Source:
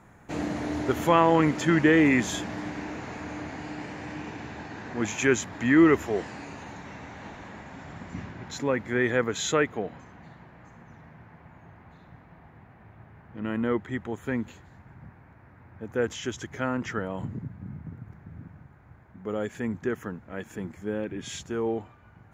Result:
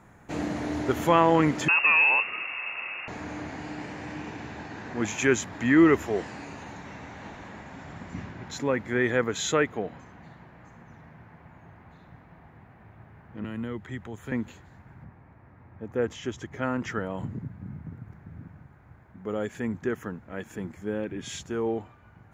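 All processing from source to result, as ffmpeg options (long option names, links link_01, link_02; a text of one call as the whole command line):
ffmpeg -i in.wav -filter_complex "[0:a]asettb=1/sr,asplit=3[link_01][link_02][link_03];[link_01]atrim=end=1.684[link_04];[link_02]atrim=start=1.68:end=3.08,asetpts=PTS-STARTPTS,afade=type=in:duration=0.004:curve=qsin,afade=type=out:start_time=1.396:duration=0.004:curve=qsin,asoftclip=type=hard:threshold=-16.5dB,lowpass=frequency=2500:width_type=q:width=0.5098,lowpass=frequency=2500:width_type=q:width=0.6013,lowpass=frequency=2500:width_type=q:width=0.9,lowpass=frequency=2500:width_type=q:width=2.563,afreqshift=-2900[link_05];[link_03]atrim=start=3.076[link_06];[link_04][link_05]acrossfade=duration=0.004:curve1=hsin:curve2=qsin[link_07];[link_07][link_06]acrossfade=duration=0.004:curve1=qsin:curve2=hsin,asettb=1/sr,asplit=3[link_08][link_09][link_10];[link_08]atrim=end=13.444[link_11];[link_09]atrim=start=13.44:end=14.32,asetpts=PTS-STARTPTS,afade=type=in:duration=0.004:curve=qsin,afade=type=out:start_time=0.876:duration=0.004:curve=qsin,equalizer=frequency=270:width_type=o:width=1.1:gain=-4,acrossover=split=260|3000[link_12][link_13][link_14];[link_13]acompressor=threshold=-41dB:ratio=3:attack=3.2:release=140:knee=2.83:detection=peak[link_15];[link_12][link_15][link_14]amix=inputs=3:normalize=0[link_16];[link_10]atrim=start=14.316[link_17];[link_11][link_16]acrossfade=duration=0.004:curve1=hsin:curve2=qsin[link_18];[link_18][link_17]acrossfade=duration=0.004:curve1=qsin:curve2=hsin,asettb=1/sr,asplit=3[link_19][link_20][link_21];[link_19]atrim=end=15.044[link_22];[link_20]atrim=start=15.04:end=16.63,asetpts=PTS-STARTPTS,afade=type=in:duration=0.004:curve=qsin,afade=type=out:start_time=1.586:duration=0.004:curve=qsin,highshelf=frequency=2900:gain=-8,bandreject=frequency=1500:width=14[link_23];[link_21]atrim=start=16.626[link_24];[link_22][link_23]acrossfade=duration=0.004:curve1=hsin:curve2=qsin[link_25];[link_25][link_24]acrossfade=duration=0.004:curve1=qsin:curve2=hsin" out.wav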